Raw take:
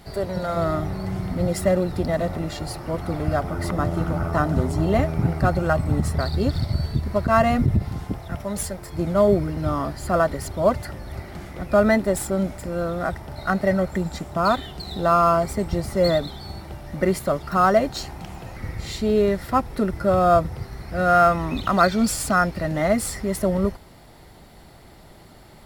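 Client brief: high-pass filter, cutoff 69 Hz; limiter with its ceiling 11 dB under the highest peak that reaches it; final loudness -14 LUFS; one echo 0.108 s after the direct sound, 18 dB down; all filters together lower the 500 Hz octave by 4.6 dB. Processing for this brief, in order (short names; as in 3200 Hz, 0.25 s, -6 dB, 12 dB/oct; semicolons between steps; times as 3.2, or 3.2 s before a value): HPF 69 Hz; bell 500 Hz -6.5 dB; limiter -17 dBFS; echo 0.108 s -18 dB; gain +14 dB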